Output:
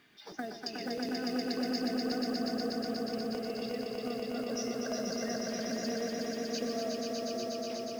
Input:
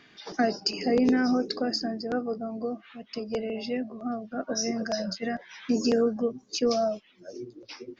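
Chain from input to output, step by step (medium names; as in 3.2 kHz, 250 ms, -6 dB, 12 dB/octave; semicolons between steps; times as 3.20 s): compression 6:1, threshold -28 dBFS, peak gain reduction 9 dB; companded quantiser 6-bit; echo with a slow build-up 121 ms, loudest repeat 5, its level -4 dB; trim -8 dB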